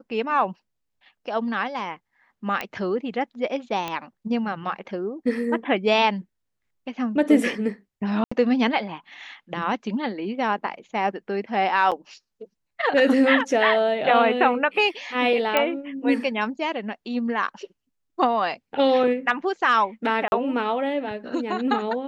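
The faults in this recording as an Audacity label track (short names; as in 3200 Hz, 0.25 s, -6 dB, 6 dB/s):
2.610000	2.610000	pop -13 dBFS
3.880000	3.880000	pop -14 dBFS
8.240000	8.310000	gap 75 ms
11.910000	11.920000	gap 7 ms
15.570000	15.570000	pop -6 dBFS
20.280000	20.320000	gap 41 ms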